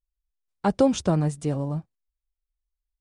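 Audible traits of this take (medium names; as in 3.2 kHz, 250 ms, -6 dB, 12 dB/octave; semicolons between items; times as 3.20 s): noise floor -87 dBFS; spectral tilt -5.0 dB/octave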